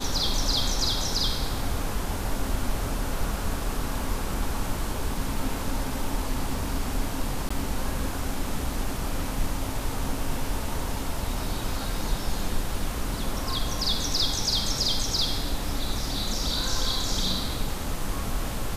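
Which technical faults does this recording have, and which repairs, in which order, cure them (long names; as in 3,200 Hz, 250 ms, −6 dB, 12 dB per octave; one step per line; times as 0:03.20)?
0:07.49–0:07.50: drop-out 15 ms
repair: repair the gap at 0:07.49, 15 ms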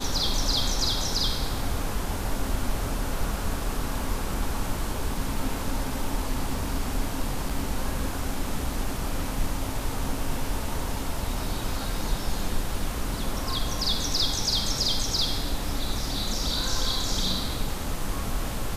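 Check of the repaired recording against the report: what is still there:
none of them is left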